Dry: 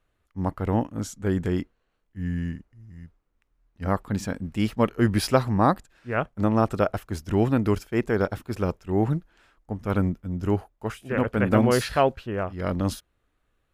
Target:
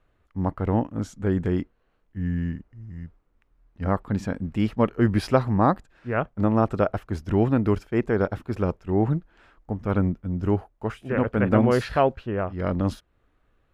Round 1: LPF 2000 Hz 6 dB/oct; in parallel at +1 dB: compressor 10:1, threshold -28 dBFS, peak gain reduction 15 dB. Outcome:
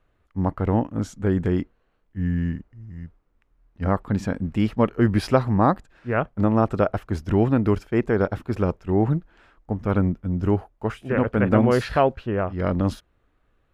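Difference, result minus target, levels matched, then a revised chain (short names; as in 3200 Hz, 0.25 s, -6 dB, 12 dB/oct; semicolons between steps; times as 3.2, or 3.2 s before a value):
compressor: peak gain reduction -9 dB
LPF 2000 Hz 6 dB/oct; in parallel at +1 dB: compressor 10:1, threshold -38 dBFS, peak gain reduction 24 dB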